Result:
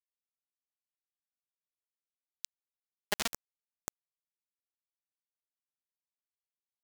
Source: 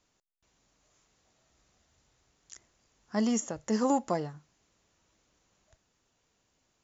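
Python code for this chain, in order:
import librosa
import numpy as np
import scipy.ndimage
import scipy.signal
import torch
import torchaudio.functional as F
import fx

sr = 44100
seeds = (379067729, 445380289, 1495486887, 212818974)

p1 = fx.doppler_pass(x, sr, speed_mps=16, closest_m=2.0, pass_at_s=2.11)
p2 = p1 + fx.echo_single(p1, sr, ms=76, db=-7.5, dry=0)
p3 = fx.quant_companded(p2, sr, bits=2)
y = F.gain(torch.from_numpy(p3), 9.5).numpy()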